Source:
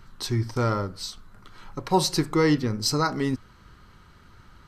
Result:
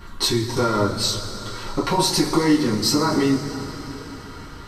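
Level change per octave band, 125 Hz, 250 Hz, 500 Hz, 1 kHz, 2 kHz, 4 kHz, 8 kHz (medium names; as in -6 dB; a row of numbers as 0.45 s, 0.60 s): +1.0 dB, +6.0 dB, +4.0 dB, +4.0 dB, +3.5 dB, +8.0 dB, +7.0 dB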